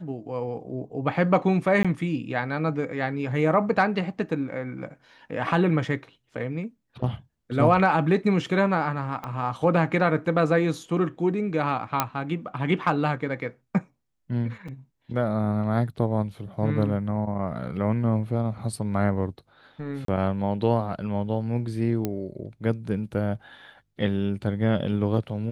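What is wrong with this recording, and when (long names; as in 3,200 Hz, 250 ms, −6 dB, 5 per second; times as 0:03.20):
0:01.83–0:01.85: drop-out 16 ms
0:09.24: click −20 dBFS
0:12.00: click −5 dBFS
0:14.68: drop-out 4.9 ms
0:20.05–0:20.08: drop-out 33 ms
0:22.05: click −13 dBFS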